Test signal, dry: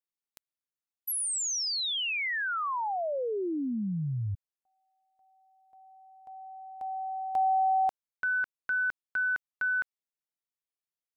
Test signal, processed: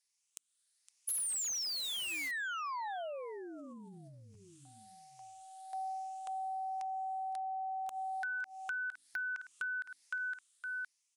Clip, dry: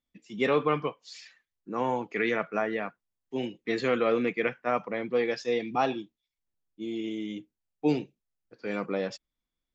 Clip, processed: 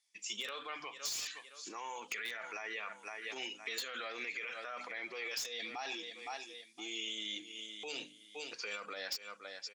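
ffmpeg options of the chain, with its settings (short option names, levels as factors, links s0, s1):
-filter_complex "[0:a]afftfilt=real='re*pow(10,7/40*sin(2*PI*(0.76*log(max(b,1)*sr/1024/100)/log(2)-(1.2)*(pts-256)/sr)))':imag='im*pow(10,7/40*sin(2*PI*(0.76*log(max(b,1)*sr/1024/100)/log(2)-(1.2)*(pts-256)/sr)))':win_size=1024:overlap=0.75,aresample=22050,aresample=44100,dynaudnorm=f=290:g=9:m=6.31,lowshelf=f=270:g=-11,bandreject=f=50:t=h:w=6,bandreject=f=100:t=h:w=6,bandreject=f=150:t=h:w=6,bandreject=f=200:t=h:w=6,bandreject=f=250:t=h:w=6,bandreject=f=300:t=h:w=6,asplit=2[s0][s1];[s1]aecho=0:1:513|1026:0.075|0.021[s2];[s0][s2]amix=inputs=2:normalize=0,alimiter=level_in=3.35:limit=0.0631:level=0:latency=1:release=223,volume=0.299,aderivative,asplit=2[s3][s4];[s4]aeval=exprs='(mod(178*val(0)+1,2)-1)/178':c=same,volume=0.631[s5];[s3][s5]amix=inputs=2:normalize=0,acompressor=threshold=0.00316:ratio=6:attack=15:release=500:knee=1:detection=peak,volume=5.01"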